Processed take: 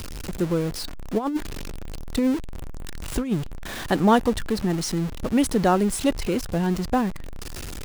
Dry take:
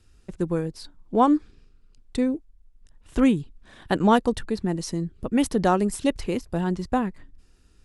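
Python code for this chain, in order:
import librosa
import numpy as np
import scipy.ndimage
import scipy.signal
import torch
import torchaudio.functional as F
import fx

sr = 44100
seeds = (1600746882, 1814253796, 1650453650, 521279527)

y = x + 0.5 * 10.0 ** (-28.0 / 20.0) * np.sign(x)
y = fx.over_compress(y, sr, threshold_db=-20.0, ratio=-0.5, at=(1.17, 3.31), fade=0.02)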